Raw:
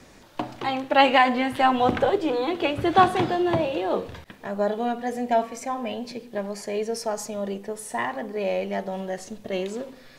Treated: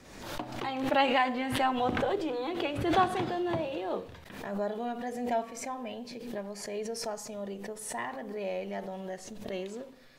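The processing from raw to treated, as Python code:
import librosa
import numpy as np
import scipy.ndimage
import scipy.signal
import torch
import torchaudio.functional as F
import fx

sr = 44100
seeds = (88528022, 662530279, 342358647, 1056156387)

y = fx.pre_swell(x, sr, db_per_s=54.0)
y = F.gain(torch.from_numpy(y), -9.0).numpy()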